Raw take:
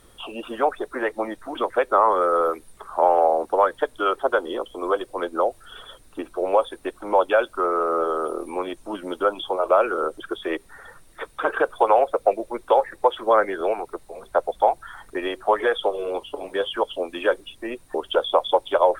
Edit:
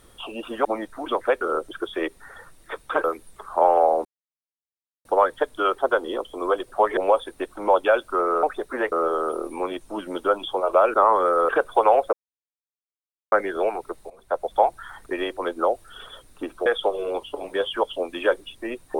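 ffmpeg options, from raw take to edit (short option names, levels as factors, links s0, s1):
-filter_complex "[0:a]asplit=16[s0][s1][s2][s3][s4][s5][s6][s7][s8][s9][s10][s11][s12][s13][s14][s15];[s0]atrim=end=0.652[s16];[s1]atrim=start=1.138:end=1.902[s17];[s2]atrim=start=9.898:end=11.532[s18];[s3]atrim=start=2.448:end=3.46,asetpts=PTS-STARTPTS,afade=t=out:st=1.008:d=0.004:c=hsin,apad=pad_dur=1[s19];[s4]atrim=start=3.46:end=5.132,asetpts=PTS-STARTPTS,afade=t=in:d=0.004:c=hsin[s20];[s5]atrim=start=15.408:end=15.662[s21];[s6]atrim=start=6.418:end=7.882[s22];[s7]atrim=start=0.648:end=1.142[s23];[s8]atrim=start=7.878:end=9.902[s24];[s9]atrim=start=1.898:end=2.452[s25];[s10]atrim=start=11.528:end=12.17,asetpts=PTS-STARTPTS,afade=t=out:st=0.638:d=0.004:c=hsin[s26];[s11]atrim=start=12.17:end=13.36,asetpts=PTS-STARTPTS,volume=0[s27];[s12]atrim=start=13.36:end=14.14,asetpts=PTS-STARTPTS,afade=t=in:d=0.004:c=hsin,afade=t=out:st=0.776:d=0.004:c=hsin:silence=0.188365[s28];[s13]atrim=start=14.14:end=15.412,asetpts=PTS-STARTPTS,afade=t=in:d=0.45:silence=0.188365[s29];[s14]atrim=start=5.128:end=6.422[s30];[s15]atrim=start=15.658[s31];[s16][s17]acrossfade=d=0.004:c1=hsin:c2=hsin[s32];[s32][s18]acrossfade=d=0.004:c1=hsin:c2=hsin[s33];[s19][s20]concat=n=2:v=0:a=1[s34];[s33][s34]acrossfade=d=0.004:c1=hsin:c2=hsin[s35];[s35][s21]acrossfade=d=0.004:c1=hsin:c2=hsin[s36];[s36][s22]acrossfade=d=0.004:c1=hsin:c2=hsin[s37];[s37][s23]acrossfade=d=0.004:c1=hsin:c2=hsin[s38];[s38][s24]acrossfade=d=0.004:c1=hsin:c2=hsin[s39];[s39][s25]acrossfade=d=0.004:c1=hsin:c2=hsin[s40];[s26][s27][s28][s29]concat=n=4:v=0:a=1[s41];[s40][s41]acrossfade=d=0.004:c1=hsin:c2=hsin[s42];[s42][s30]acrossfade=d=0.004:c1=hsin:c2=hsin[s43];[s43][s31]acrossfade=d=0.004:c1=hsin:c2=hsin"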